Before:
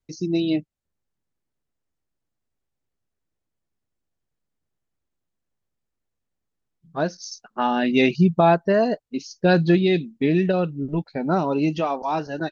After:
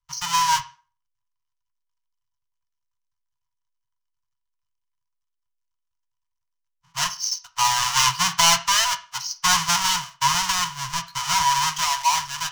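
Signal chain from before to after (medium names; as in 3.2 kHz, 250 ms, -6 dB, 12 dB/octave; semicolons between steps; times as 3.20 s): square wave that keeps the level; Chebyshev band-stop 130–970 Hz, order 4; peaking EQ 5.9 kHz +14.5 dB 0.83 oct; in parallel at -12 dB: saturation -10.5 dBFS, distortion -11 dB; on the sum: peaking EQ 73 Hz -8 dB 0.59 oct; small resonant body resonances 690/980/3000 Hz, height 14 dB, ringing for 40 ms; on a send at -6 dB: reverberation RT60 0.40 s, pre-delay 3 ms; on the sum: tape noise reduction on one side only decoder only; trim -5.5 dB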